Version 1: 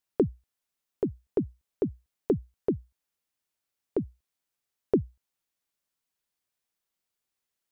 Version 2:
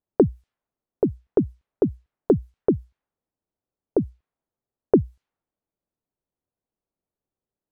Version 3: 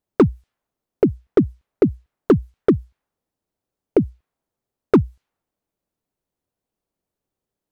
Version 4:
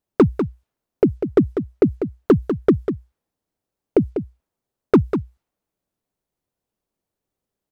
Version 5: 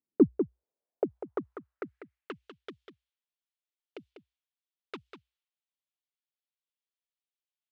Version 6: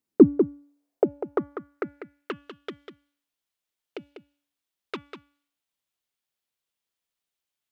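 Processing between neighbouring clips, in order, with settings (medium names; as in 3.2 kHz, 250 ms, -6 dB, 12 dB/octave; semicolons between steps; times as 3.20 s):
level-controlled noise filter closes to 580 Hz, open at -27.5 dBFS; trim +7.5 dB
hard clipper -12 dBFS, distortion -14 dB; trim +5.5 dB
delay 196 ms -8.5 dB
band-pass sweep 260 Hz -> 3.2 kHz, 0.07–2.55 s; trim -4.5 dB
de-hum 286.8 Hz, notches 12; trim +8 dB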